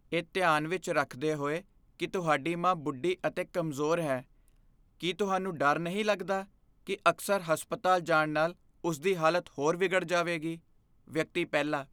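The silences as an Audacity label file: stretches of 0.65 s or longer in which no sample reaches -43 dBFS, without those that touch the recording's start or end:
4.210000	5.000000	silence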